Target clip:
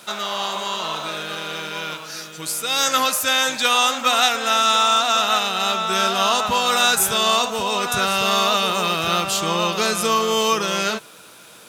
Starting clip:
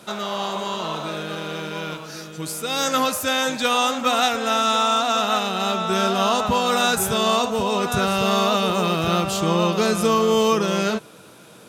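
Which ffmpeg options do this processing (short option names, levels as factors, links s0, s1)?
-af "tiltshelf=f=670:g=-6.5,acrusher=bits=8:mix=0:aa=0.000001,volume=0.891"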